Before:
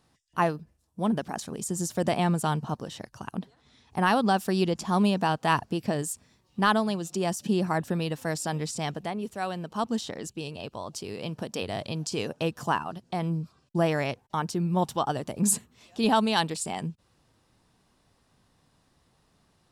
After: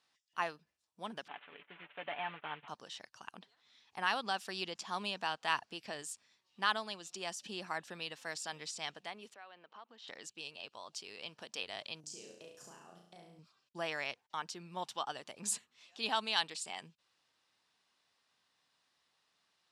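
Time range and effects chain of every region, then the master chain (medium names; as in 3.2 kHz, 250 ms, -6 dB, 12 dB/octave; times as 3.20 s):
1.28–2.68 s: CVSD coder 16 kbps + bass shelf 260 Hz -11.5 dB + comb 6.9 ms, depth 54%
9.34–10.08 s: band-pass 290–2500 Hz + compression 3:1, threshold -40 dBFS
12.00–13.39 s: compression 10:1, threshold -31 dBFS + high-order bell 1.9 kHz -13.5 dB 2.9 oct + flutter echo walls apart 5.9 m, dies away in 0.67 s
whole clip: low-pass 3.3 kHz 12 dB/octave; differentiator; trim +6.5 dB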